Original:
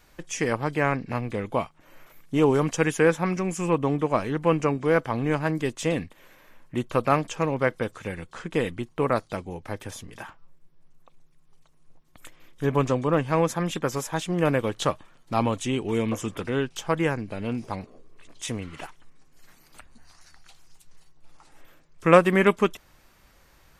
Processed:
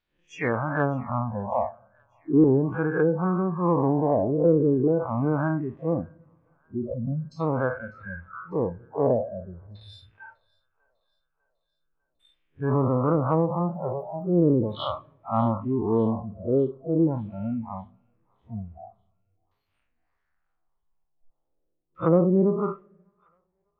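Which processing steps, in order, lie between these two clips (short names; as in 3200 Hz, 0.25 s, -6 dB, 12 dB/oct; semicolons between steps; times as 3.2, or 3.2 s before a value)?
time blur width 0.127 s; LFO low-pass saw down 0.41 Hz 350–3700 Hz; 6.94–7.4 spectral gain 270–4000 Hz -15 dB; treble ducked by the level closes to 500 Hz, closed at -18.5 dBFS; 13.04–14.89 crackle 42/s -54 dBFS; spectral noise reduction 28 dB; in parallel at -6.5 dB: soft clip -14.5 dBFS, distortion -22 dB; on the sum: thin delay 0.599 s, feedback 55%, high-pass 1800 Hz, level -23 dB; on a send at -20 dB: reverb, pre-delay 15 ms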